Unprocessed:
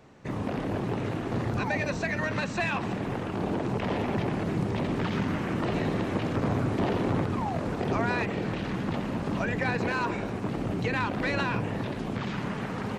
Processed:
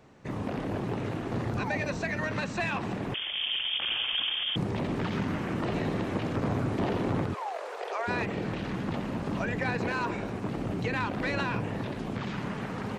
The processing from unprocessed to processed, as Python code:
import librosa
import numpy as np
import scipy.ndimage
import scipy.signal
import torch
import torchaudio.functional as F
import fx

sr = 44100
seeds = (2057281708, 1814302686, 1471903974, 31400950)

y = fx.freq_invert(x, sr, carrier_hz=3400, at=(3.14, 4.56))
y = fx.steep_highpass(y, sr, hz=440.0, slope=48, at=(7.33, 8.07), fade=0.02)
y = y * librosa.db_to_amplitude(-2.0)